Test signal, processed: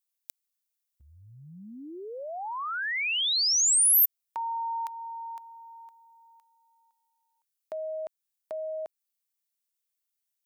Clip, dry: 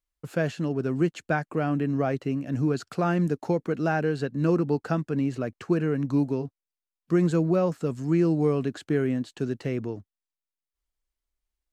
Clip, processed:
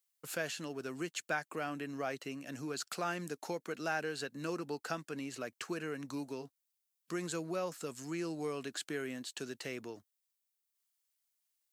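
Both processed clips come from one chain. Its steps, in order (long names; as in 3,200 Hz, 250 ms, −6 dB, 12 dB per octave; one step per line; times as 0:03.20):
downward compressor 1.5 to 1, threshold −33 dBFS
high-pass filter 140 Hz 6 dB per octave
spectral tilt +4 dB per octave
level −3.5 dB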